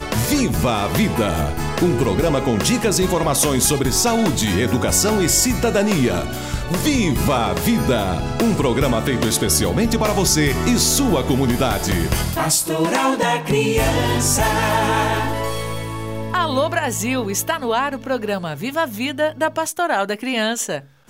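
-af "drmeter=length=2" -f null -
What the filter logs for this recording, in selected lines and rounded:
Channel 1: DR: 9.3
Overall DR: 9.3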